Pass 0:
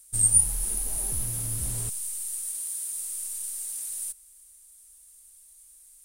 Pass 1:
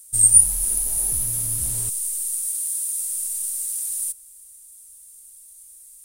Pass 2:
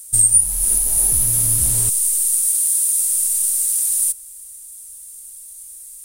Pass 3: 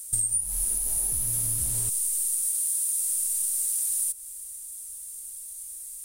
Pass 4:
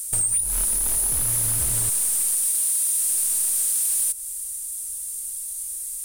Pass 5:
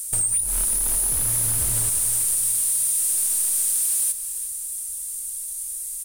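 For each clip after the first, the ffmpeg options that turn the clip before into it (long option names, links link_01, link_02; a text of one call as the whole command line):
ffmpeg -i in.wav -af "highshelf=frequency=5800:gain=9.5" out.wav
ffmpeg -i in.wav -af "alimiter=limit=-12.5dB:level=0:latency=1:release=484,volume=8.5dB" out.wav
ffmpeg -i in.wav -af "acompressor=threshold=-22dB:ratio=6,volume=-2dB" out.wav
ffmpeg -i in.wav -af "asoftclip=type=tanh:threshold=-26.5dB,volume=8.5dB" out.wav
ffmpeg -i in.wav -af "aecho=1:1:353|706|1059|1412|1765:0.251|0.121|0.0579|0.0278|0.0133" out.wav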